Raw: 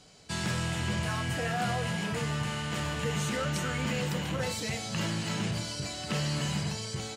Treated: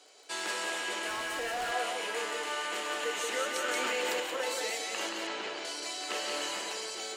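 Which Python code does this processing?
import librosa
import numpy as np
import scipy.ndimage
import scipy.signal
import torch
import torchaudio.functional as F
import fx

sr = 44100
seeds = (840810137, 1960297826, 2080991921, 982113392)

p1 = fx.air_absorb(x, sr, metres=120.0, at=(5.09, 5.65))
p2 = fx.dmg_crackle(p1, sr, seeds[0], per_s=20.0, level_db=-44.0)
p3 = scipy.signal.sosfilt(scipy.signal.butter(6, 330.0, 'highpass', fs=sr, output='sos'), p2)
p4 = fx.peak_eq(p3, sr, hz=5100.0, db=-3.0, octaves=0.33)
p5 = p4 + fx.echo_single(p4, sr, ms=178, db=-4.0, dry=0)
p6 = fx.clip_hard(p5, sr, threshold_db=-31.0, at=(1.08, 1.72))
y = fx.env_flatten(p6, sr, amount_pct=100, at=(3.68, 4.2))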